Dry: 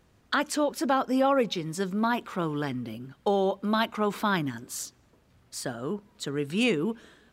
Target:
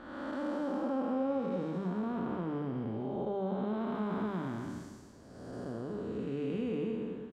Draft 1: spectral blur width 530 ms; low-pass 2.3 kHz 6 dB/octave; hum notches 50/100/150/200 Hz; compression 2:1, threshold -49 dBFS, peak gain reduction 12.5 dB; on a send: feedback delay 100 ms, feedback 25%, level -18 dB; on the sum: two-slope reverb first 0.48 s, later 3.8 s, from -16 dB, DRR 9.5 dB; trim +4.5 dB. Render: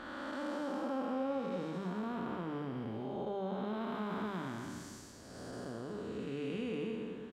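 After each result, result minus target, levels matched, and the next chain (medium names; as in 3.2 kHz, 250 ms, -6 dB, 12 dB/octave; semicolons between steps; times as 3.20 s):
2 kHz band +5.5 dB; compression: peak gain reduction +5 dB
spectral blur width 530 ms; low-pass 690 Hz 6 dB/octave; hum notches 50/100/150/200 Hz; compression 2:1, threshold -49 dBFS, peak gain reduction 11.5 dB; on a send: feedback delay 100 ms, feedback 25%, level -18 dB; on the sum: two-slope reverb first 0.48 s, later 3.8 s, from -16 dB, DRR 9.5 dB; trim +4.5 dB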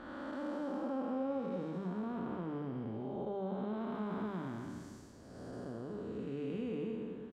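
compression: peak gain reduction +4.5 dB
spectral blur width 530 ms; low-pass 690 Hz 6 dB/octave; hum notches 50/100/150/200 Hz; compression 2:1, threshold -40.5 dBFS, peak gain reduction 7.5 dB; on a send: feedback delay 100 ms, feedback 25%, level -18 dB; on the sum: two-slope reverb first 0.48 s, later 3.8 s, from -16 dB, DRR 9.5 dB; trim +4.5 dB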